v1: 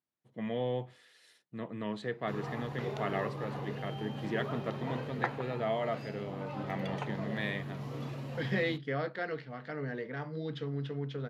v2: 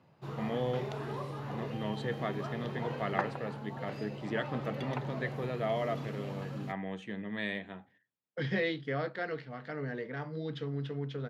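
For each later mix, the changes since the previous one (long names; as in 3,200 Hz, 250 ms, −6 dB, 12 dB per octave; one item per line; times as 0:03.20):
background: entry −2.05 s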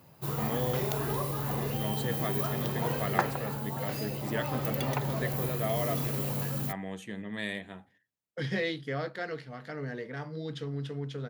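background +5.5 dB
master: remove band-pass filter 100–3,600 Hz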